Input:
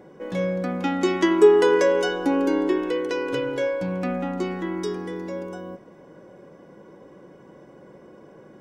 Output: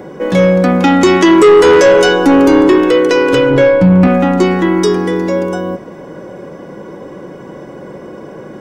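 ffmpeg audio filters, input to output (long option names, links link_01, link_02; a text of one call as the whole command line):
ffmpeg -i in.wav -filter_complex "[0:a]asplit=3[link_01][link_02][link_03];[link_01]afade=type=out:start_time=3.49:duration=0.02[link_04];[link_02]bass=frequency=250:gain=11,treble=frequency=4000:gain=-10,afade=type=in:start_time=3.49:duration=0.02,afade=type=out:start_time=4.06:duration=0.02[link_05];[link_03]afade=type=in:start_time=4.06:duration=0.02[link_06];[link_04][link_05][link_06]amix=inputs=3:normalize=0,acrossover=split=110|4000[link_07][link_08][link_09];[link_08]asoftclip=type=tanh:threshold=-19dB[link_10];[link_07][link_10][link_09]amix=inputs=3:normalize=0,alimiter=level_in=18.5dB:limit=-1dB:release=50:level=0:latency=1,volume=-1dB" out.wav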